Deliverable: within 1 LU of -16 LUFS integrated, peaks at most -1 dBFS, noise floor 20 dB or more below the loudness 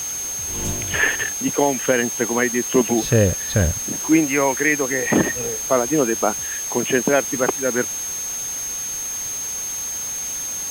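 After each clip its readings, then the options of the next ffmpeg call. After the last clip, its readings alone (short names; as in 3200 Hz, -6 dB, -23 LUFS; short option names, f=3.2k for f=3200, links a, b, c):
steady tone 6400 Hz; tone level -25 dBFS; noise floor -27 dBFS; noise floor target -40 dBFS; loudness -20.0 LUFS; peak -4.0 dBFS; loudness target -16.0 LUFS
-> -af "bandreject=f=6.4k:w=30"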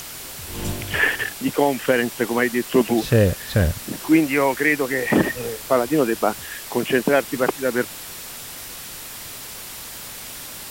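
steady tone none; noise floor -36 dBFS; noise floor target -41 dBFS
-> -af "afftdn=nr=6:nf=-36"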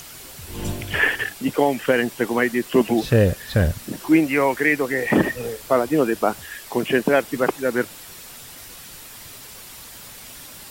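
noise floor -41 dBFS; loudness -21.0 LUFS; peak -4.5 dBFS; loudness target -16.0 LUFS
-> -af "volume=5dB,alimiter=limit=-1dB:level=0:latency=1"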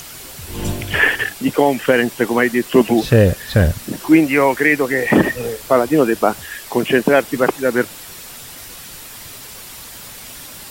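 loudness -16.0 LUFS; peak -1.0 dBFS; noise floor -36 dBFS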